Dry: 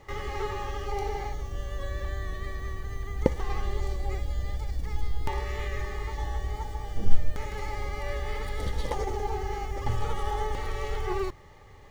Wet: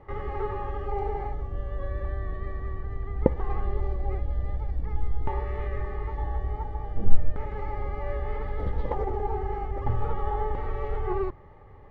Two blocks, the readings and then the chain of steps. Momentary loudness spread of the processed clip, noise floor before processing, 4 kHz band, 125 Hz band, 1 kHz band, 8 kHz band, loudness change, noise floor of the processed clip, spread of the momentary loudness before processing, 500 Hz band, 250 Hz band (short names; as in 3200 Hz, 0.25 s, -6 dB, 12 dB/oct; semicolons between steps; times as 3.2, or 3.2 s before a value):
5 LU, -49 dBFS, -14.5 dB, +2.0 dB, +1.0 dB, n/a, +1.5 dB, -47 dBFS, 5 LU, +2.0 dB, +2.0 dB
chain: LPF 1300 Hz 12 dB/oct; gain +2 dB